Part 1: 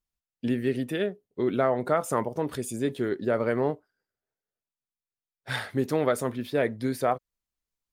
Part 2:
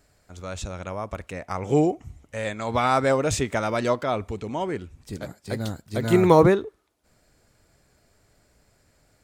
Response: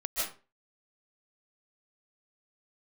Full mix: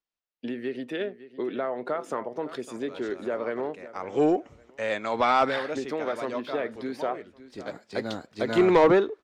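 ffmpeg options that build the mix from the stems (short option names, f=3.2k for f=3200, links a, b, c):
-filter_complex "[0:a]acompressor=threshold=-25dB:ratio=6,volume=0.5dB,asplit=3[a][b][c];[b]volume=-16dB[d];[1:a]adelay=2450,volume=2dB[e];[c]apad=whole_len=515292[f];[e][f]sidechaincompress=threshold=-39dB:ratio=4:attack=9.1:release=565[g];[d]aecho=0:1:557|1114|1671|2228:1|0.27|0.0729|0.0197[h];[a][g][h]amix=inputs=3:normalize=0,acrossover=split=230 5600:gain=0.112 1 0.0891[i][j][k];[i][j][k]amix=inputs=3:normalize=0,asoftclip=type=tanh:threshold=-12dB"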